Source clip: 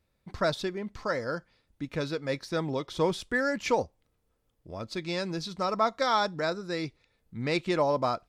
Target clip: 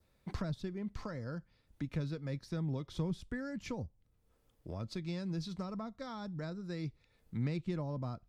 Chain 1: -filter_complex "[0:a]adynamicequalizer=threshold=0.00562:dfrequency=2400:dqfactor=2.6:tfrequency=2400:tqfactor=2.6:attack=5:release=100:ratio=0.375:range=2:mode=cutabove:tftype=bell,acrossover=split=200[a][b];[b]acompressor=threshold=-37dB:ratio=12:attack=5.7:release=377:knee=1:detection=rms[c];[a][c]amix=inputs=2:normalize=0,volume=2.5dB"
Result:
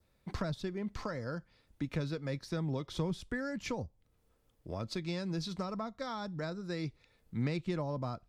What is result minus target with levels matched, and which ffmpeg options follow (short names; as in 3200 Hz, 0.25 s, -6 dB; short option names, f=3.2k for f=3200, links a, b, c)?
compressor: peak gain reduction -6 dB
-filter_complex "[0:a]adynamicequalizer=threshold=0.00562:dfrequency=2400:dqfactor=2.6:tfrequency=2400:tqfactor=2.6:attack=5:release=100:ratio=0.375:range=2:mode=cutabove:tftype=bell,acrossover=split=200[a][b];[b]acompressor=threshold=-43.5dB:ratio=12:attack=5.7:release=377:knee=1:detection=rms[c];[a][c]amix=inputs=2:normalize=0,volume=2.5dB"